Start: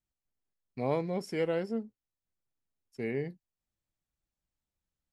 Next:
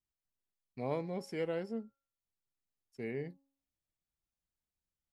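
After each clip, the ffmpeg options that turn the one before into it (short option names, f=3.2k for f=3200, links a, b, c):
-af "bandreject=f=274.8:t=h:w=4,bandreject=f=549.6:t=h:w=4,bandreject=f=824.4:t=h:w=4,bandreject=f=1.0992k:t=h:w=4,bandreject=f=1.374k:t=h:w=4,volume=-5.5dB"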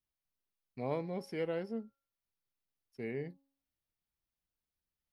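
-af "equalizer=f=7.4k:w=4.2:g=-14"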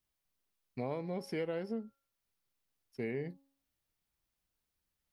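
-af "acompressor=threshold=-39dB:ratio=5,volume=5.5dB"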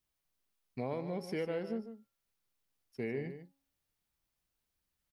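-af "aecho=1:1:148:0.299"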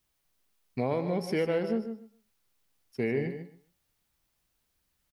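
-af "aecho=1:1:130|260:0.158|0.0396,volume=8dB"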